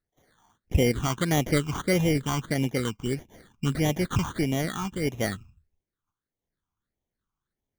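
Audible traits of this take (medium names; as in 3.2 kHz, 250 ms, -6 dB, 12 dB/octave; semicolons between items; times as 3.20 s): aliases and images of a low sample rate 2.6 kHz, jitter 0%; phasing stages 8, 1.6 Hz, lowest notch 530–1400 Hz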